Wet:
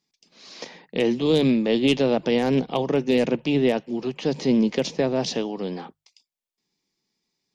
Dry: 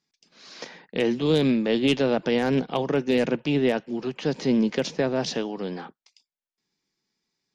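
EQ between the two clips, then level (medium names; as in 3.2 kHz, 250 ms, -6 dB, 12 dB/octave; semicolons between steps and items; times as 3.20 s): peaking EQ 1.5 kHz -7.5 dB 0.54 oct; hum notches 50/100/150 Hz; +2.0 dB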